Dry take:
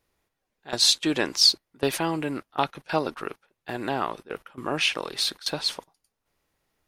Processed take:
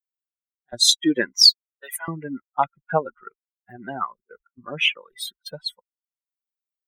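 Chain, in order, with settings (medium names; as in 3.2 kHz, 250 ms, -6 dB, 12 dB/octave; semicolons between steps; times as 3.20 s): expander on every frequency bin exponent 3; 1.42–2.08 s: high-pass 990 Hz 24 dB/octave; trim +8 dB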